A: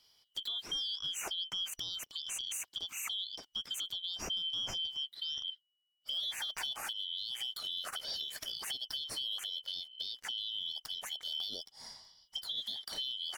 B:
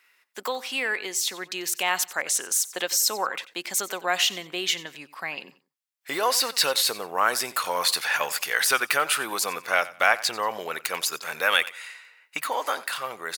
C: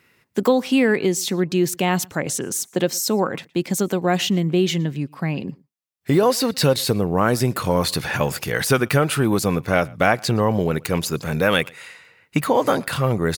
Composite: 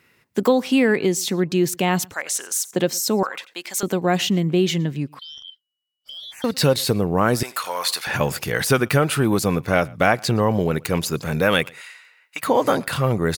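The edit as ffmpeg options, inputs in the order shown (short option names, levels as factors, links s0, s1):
-filter_complex "[1:a]asplit=4[s0][s1][s2][s3];[2:a]asplit=6[s4][s5][s6][s7][s8][s9];[s4]atrim=end=2.142[s10];[s0]atrim=start=2.138:end=2.712[s11];[s5]atrim=start=2.708:end=3.232[s12];[s1]atrim=start=3.228:end=3.832[s13];[s6]atrim=start=3.828:end=5.192[s14];[0:a]atrim=start=5.188:end=6.442[s15];[s7]atrim=start=6.438:end=7.432[s16];[s2]atrim=start=7.428:end=8.072[s17];[s8]atrim=start=8.068:end=11.812[s18];[s3]atrim=start=11.808:end=12.432[s19];[s9]atrim=start=12.428[s20];[s10][s11]acrossfade=d=0.004:c1=hsin:c2=hsin[s21];[s21][s12]acrossfade=d=0.004:c1=hsin:c2=hsin[s22];[s22][s13]acrossfade=d=0.004:c1=hsin:c2=hsin[s23];[s23][s14]acrossfade=d=0.004:c1=hsin:c2=hsin[s24];[s24][s15]acrossfade=d=0.004:c1=hsin:c2=hsin[s25];[s25][s16]acrossfade=d=0.004:c1=hsin:c2=hsin[s26];[s26][s17]acrossfade=d=0.004:c1=hsin:c2=hsin[s27];[s27][s18]acrossfade=d=0.004:c1=hsin:c2=hsin[s28];[s28][s19]acrossfade=d=0.004:c1=hsin:c2=hsin[s29];[s29][s20]acrossfade=d=0.004:c1=hsin:c2=hsin"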